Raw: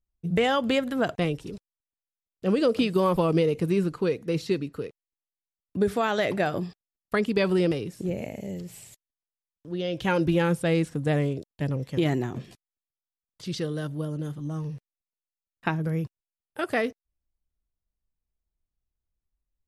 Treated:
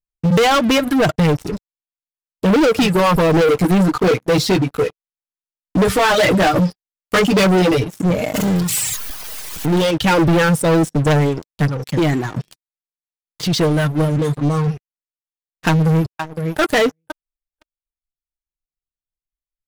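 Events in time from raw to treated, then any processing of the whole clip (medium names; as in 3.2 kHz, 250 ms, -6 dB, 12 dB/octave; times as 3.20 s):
0.77–2.89 s: bass shelf 240 Hz +4 dB
3.47–7.84 s: doubling 16 ms -2 dB
8.34–9.91 s: jump at every zero crossing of -34 dBFS
10.58–11.04 s: high-order bell 1.7 kHz -9.5 dB
11.65–13.60 s: compression 1.5:1, threshold -37 dBFS
14.16–14.68 s: rippled EQ curve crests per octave 1, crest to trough 9 dB
15.68–16.60 s: echo throw 510 ms, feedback 15%, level -11 dB
whole clip: reverb removal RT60 1.3 s; comb 6.5 ms, depth 42%; waveshaping leveller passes 5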